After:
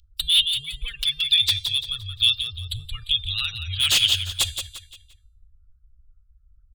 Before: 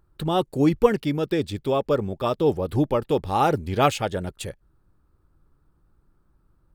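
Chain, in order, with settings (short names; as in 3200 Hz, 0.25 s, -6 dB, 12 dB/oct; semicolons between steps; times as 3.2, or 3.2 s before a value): spectral gate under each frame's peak -30 dB strong; in parallel at +0.5 dB: vocal rider within 3 dB 0.5 s; on the sum: inverse Chebyshev band-stop 180–960 Hz, stop band 50 dB; resonant high shelf 2600 Hz +9 dB, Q 3; de-hum 398.8 Hz, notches 35; hard clip -16.5 dBFS, distortion -7 dB; on a send: feedback echo 0.174 s, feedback 34%, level -8 dB; on the sum: LFO bell 1.1 Hz 580–3000 Hz +7 dB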